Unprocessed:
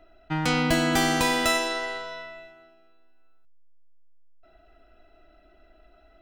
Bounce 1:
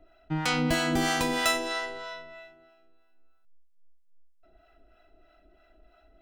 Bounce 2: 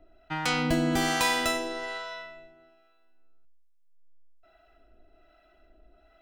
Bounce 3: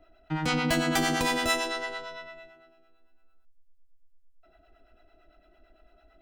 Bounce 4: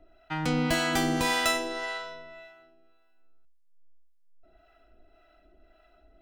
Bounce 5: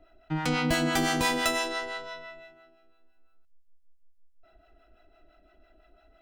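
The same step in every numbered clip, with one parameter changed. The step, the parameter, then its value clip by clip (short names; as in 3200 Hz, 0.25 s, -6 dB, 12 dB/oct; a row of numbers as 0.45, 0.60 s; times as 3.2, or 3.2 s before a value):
harmonic tremolo, rate: 3.1, 1.2, 8.9, 1.8, 5.9 Hz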